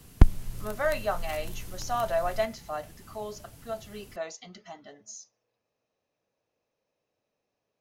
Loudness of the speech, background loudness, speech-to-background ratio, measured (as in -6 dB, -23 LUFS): -33.5 LUFS, -33.5 LUFS, 0.0 dB